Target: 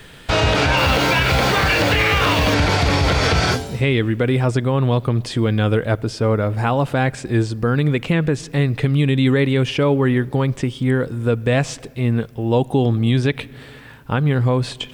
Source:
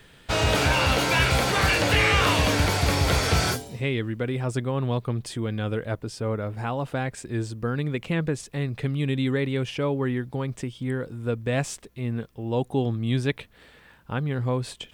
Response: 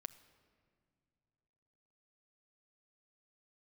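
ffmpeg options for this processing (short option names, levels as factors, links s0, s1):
-filter_complex "[0:a]acrossover=split=6000[s0][s1];[s1]acompressor=threshold=0.00224:ratio=4:attack=1:release=60[s2];[s0][s2]amix=inputs=2:normalize=0,asettb=1/sr,asplit=3[s3][s4][s5];[s3]atrim=end=0.774[s6];[s4]atrim=start=0.77:end=2.54,asetpts=PTS-STARTPTS,afade=t=in:d=0.004:c=qsin,afade=t=out:st=1.766:d=0.004:c=qsin,acrusher=bits=5:mix=0:aa=0.5[s7];[s5]atrim=start=2.536[s8];[s6][s7]acrossfade=d=0.004:c1=hsin:c2=qsin[s9];[s9][s8]acrossfade=d=0.004:c1=qsin:c2=hsin,asplit=2[s10][s11];[1:a]atrim=start_sample=2205[s12];[s11][s12]afir=irnorm=-1:irlink=0,volume=0.841[s13];[s10][s13]amix=inputs=2:normalize=0,alimiter=limit=0.188:level=0:latency=1:release=96,volume=2.24"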